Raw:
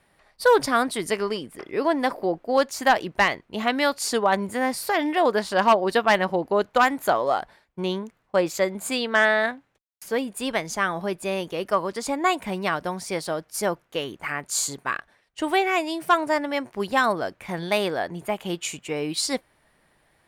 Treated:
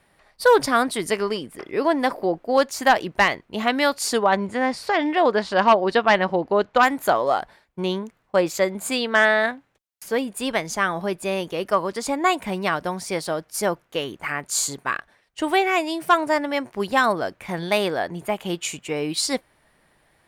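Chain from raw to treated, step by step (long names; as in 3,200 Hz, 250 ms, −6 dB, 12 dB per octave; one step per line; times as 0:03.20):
0:04.23–0:06.83: low-pass filter 5,300 Hz 12 dB per octave
level +2 dB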